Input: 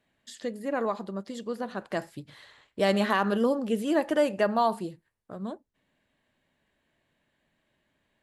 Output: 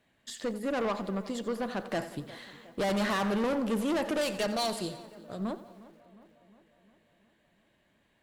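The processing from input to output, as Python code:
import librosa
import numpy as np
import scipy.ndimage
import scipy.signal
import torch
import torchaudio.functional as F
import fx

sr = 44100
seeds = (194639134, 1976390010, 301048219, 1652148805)

y = fx.graphic_eq_10(x, sr, hz=(250, 1000, 4000, 8000), db=(-6, -10, 11, 7), at=(4.21, 5.39))
y = fx.tube_stage(y, sr, drive_db=31.0, bias=0.35)
y = fx.echo_filtered(y, sr, ms=358, feedback_pct=62, hz=2700.0, wet_db=-18.0)
y = fx.echo_crushed(y, sr, ms=89, feedback_pct=55, bits=10, wet_db=-14.5)
y = y * librosa.db_to_amplitude(4.5)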